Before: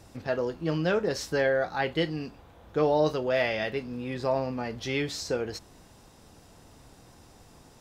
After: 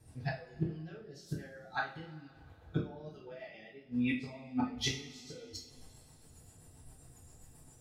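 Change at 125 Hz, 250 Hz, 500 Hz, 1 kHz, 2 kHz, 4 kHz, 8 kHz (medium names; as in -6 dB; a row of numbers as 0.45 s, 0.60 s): -5.5 dB, -5.5 dB, -21.0 dB, -11.5 dB, -10.5 dB, -6.5 dB, -5.0 dB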